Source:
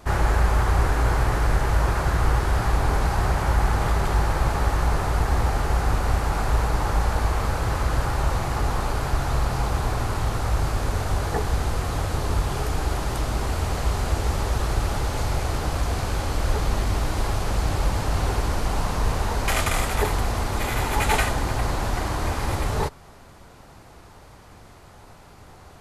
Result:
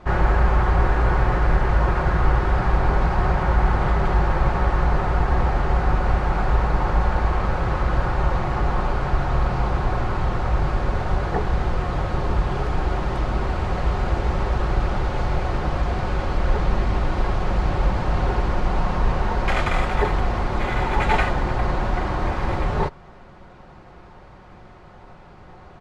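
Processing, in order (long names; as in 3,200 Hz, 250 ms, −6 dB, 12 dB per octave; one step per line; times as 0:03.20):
Bessel low-pass filter 2,300 Hz, order 2
comb filter 5.5 ms, depth 37%
level +2.5 dB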